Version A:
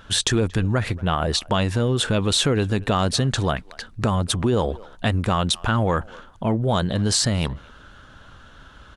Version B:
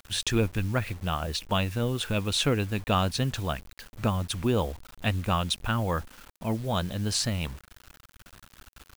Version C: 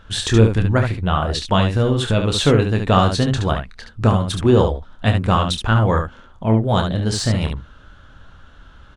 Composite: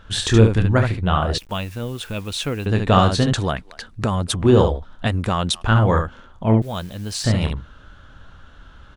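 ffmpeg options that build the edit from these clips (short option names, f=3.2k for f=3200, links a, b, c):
-filter_complex "[1:a]asplit=2[a][b];[0:a]asplit=2[c][d];[2:a]asplit=5[e][f][g][h][i];[e]atrim=end=1.382[j];[a]atrim=start=1.378:end=2.662[k];[f]atrim=start=2.658:end=3.332[l];[c]atrim=start=3.328:end=4.422[m];[g]atrim=start=4.418:end=5.08[n];[d]atrim=start=5.06:end=5.63[o];[h]atrim=start=5.61:end=6.622[p];[b]atrim=start=6.618:end=7.242[q];[i]atrim=start=7.238[r];[j][k]acrossfade=d=0.004:c1=hsin:c2=hsin[s];[s][l]acrossfade=d=0.004:c1=hsin:c2=hsin[t];[t][m]acrossfade=d=0.004:c1=hsin:c2=hsin[u];[u][n]acrossfade=d=0.004:c1=hsin:c2=hsin[v];[v][o]acrossfade=d=0.02:c1=tri:c2=tri[w];[w][p]acrossfade=d=0.02:c1=tri:c2=tri[x];[x][q]acrossfade=d=0.004:c1=hsin:c2=hsin[y];[y][r]acrossfade=d=0.004:c1=hsin:c2=hsin"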